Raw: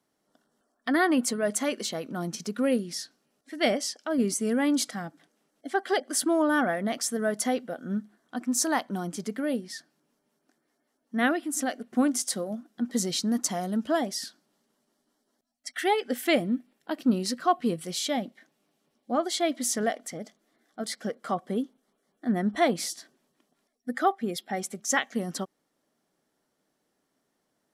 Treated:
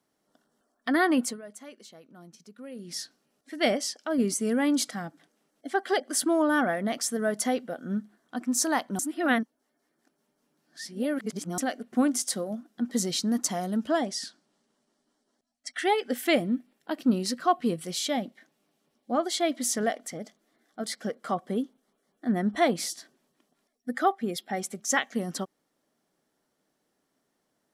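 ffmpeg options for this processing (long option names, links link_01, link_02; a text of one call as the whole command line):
ffmpeg -i in.wav -filter_complex "[0:a]asettb=1/sr,asplit=3[link_01][link_02][link_03];[link_01]atrim=end=13.894[link_04];[link_02]atrim=start=13.89:end=15.89,asetpts=PTS-STARTPTS,afade=type=in:duration=0.004:curve=qsin,afade=type=out:start_time=1.996:duration=0.004:curve=qsin,lowpass=frequency=9700:width=0.5412,lowpass=frequency=9700:width=1.3066[link_05];[link_03]atrim=start=15.886[link_06];[link_04][link_05]acrossfade=duration=0.004:curve1=hsin:curve2=qsin[link_07];[link_07][link_06]acrossfade=duration=0.004:curve1=qsin:curve2=hsin,asplit=5[link_08][link_09][link_10][link_11][link_12];[link_08]atrim=end=1.42,asetpts=PTS-STARTPTS,afade=type=out:start_time=1.19:duration=0.23:silence=0.133352[link_13];[link_09]atrim=start=1.42:end=2.75,asetpts=PTS-STARTPTS,volume=-17.5dB[link_14];[link_10]atrim=start=2.75:end=8.992,asetpts=PTS-STARTPTS,afade=type=in:duration=0.23:silence=0.133352[link_15];[link_11]atrim=start=8.988:end=11.582,asetpts=PTS-STARTPTS,areverse[link_16];[link_12]atrim=start=11.578[link_17];[link_13][link_14][link_15]concat=n=3:v=0:a=1[link_18];[link_18][link_16]acrossfade=duration=0.004:curve1=hsin:curve2=hsin[link_19];[link_19][link_17]acrossfade=duration=0.004:curve1=hsin:curve2=hsin" out.wav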